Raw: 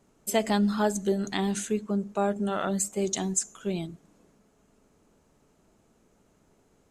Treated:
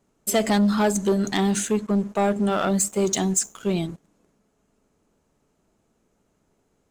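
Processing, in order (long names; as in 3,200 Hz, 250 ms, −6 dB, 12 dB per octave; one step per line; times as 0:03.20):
leveller curve on the samples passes 2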